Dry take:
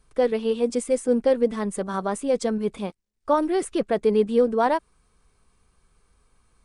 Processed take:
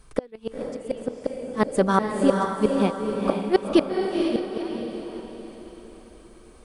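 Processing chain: inverted gate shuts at -15 dBFS, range -33 dB; echo that smears into a reverb 479 ms, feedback 46%, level -3 dB; trim +8.5 dB

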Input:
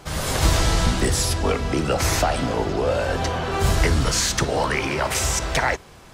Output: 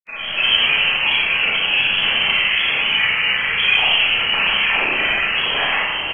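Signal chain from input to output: frequency inversion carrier 2.8 kHz; bouncing-ball echo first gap 630 ms, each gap 0.9×, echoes 5; granulator 100 ms, pitch spread up and down by 3 st; Schroeder reverb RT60 0.99 s, combs from 28 ms, DRR -5.5 dB; trim -4.5 dB

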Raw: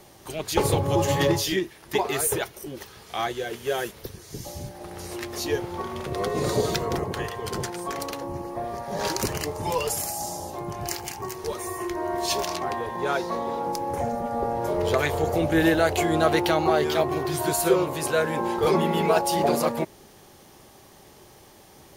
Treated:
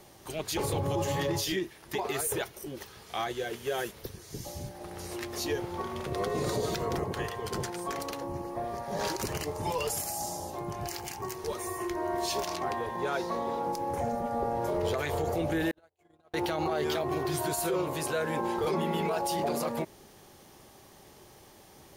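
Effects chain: peak limiter -18 dBFS, peak gain reduction 10 dB; 15.71–16.34 s: gate -21 dBFS, range -54 dB; trim -3.5 dB

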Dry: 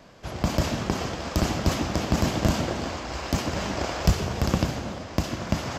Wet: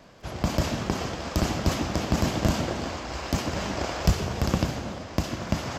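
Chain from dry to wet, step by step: crackle 26 per s -47 dBFS; trim -1 dB

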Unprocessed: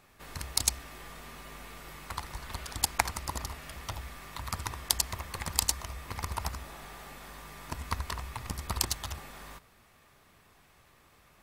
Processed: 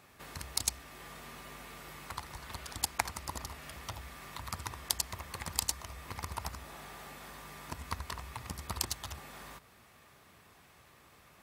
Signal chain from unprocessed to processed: in parallel at +2 dB: compression, threshold -49 dBFS, peak gain reduction 27 dB; on the sum: high-pass 64 Hz; trim -5.5 dB

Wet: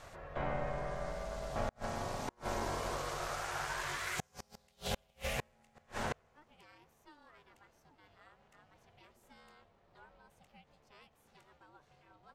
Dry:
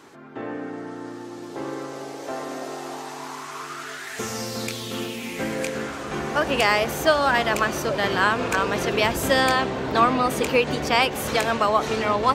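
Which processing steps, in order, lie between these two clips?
inverted gate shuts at -20 dBFS, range -37 dB; ring modulator 300 Hz; trim -1.5 dB

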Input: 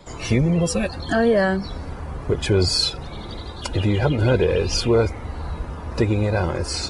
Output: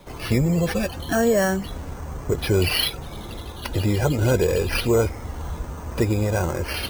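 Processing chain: careless resampling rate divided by 6×, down none, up hold; trim -1.5 dB

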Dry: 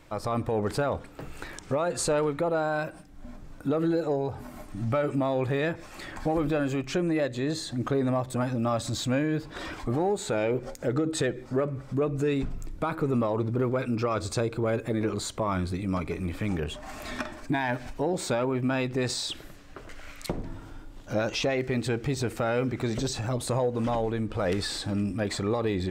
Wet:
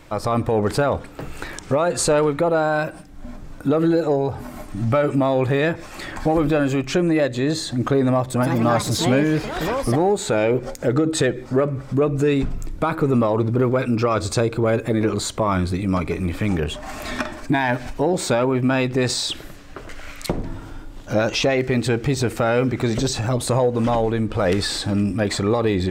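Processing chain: 8.28–10.34 s: ever faster or slower copies 132 ms, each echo +5 st, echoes 2, each echo -6 dB; trim +8 dB

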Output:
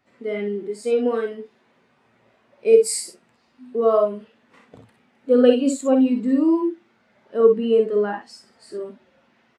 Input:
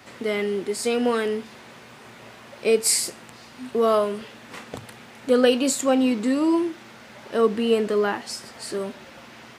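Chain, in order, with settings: early reflections 53 ms -7 dB, 64 ms -6.5 dB; spectral contrast expander 1.5:1; trim +1.5 dB

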